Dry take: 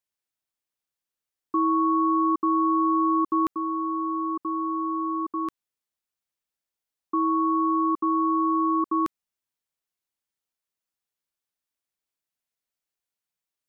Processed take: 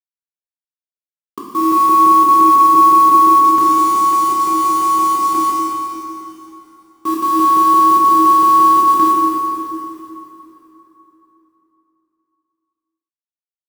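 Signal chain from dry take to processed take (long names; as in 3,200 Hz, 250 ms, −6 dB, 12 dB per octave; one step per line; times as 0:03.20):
reversed piece by piece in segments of 172 ms
bit reduction 6 bits
dense smooth reverb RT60 3.5 s, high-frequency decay 0.75×, DRR −5.5 dB
level +3 dB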